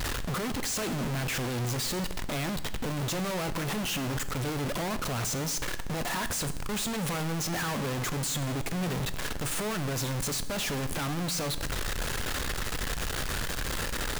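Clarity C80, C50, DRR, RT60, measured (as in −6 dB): 15.5 dB, 14.0 dB, 11.0 dB, 1.1 s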